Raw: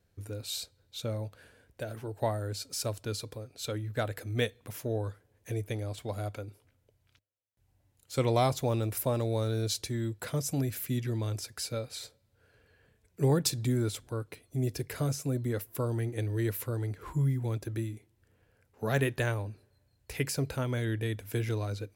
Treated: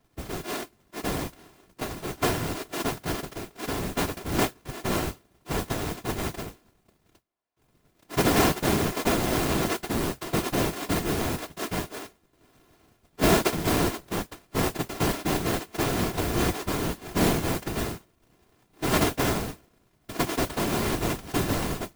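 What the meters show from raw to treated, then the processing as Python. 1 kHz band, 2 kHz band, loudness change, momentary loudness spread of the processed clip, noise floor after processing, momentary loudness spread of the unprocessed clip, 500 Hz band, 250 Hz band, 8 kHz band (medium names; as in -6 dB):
+10.0 dB, +9.5 dB, +5.5 dB, 11 LU, -67 dBFS, 11 LU, +4.5 dB, +7.5 dB, +6.5 dB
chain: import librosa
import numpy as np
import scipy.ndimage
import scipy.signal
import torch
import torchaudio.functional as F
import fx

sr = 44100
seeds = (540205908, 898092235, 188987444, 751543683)

y = np.r_[np.sort(x[:len(x) // 128 * 128].reshape(-1, 128), axis=1).ravel(), x[len(x) // 128 * 128:]]
y = fx.mod_noise(y, sr, seeds[0], snr_db=12)
y = fx.whisperise(y, sr, seeds[1])
y = y * librosa.db_to_amplitude(4.5)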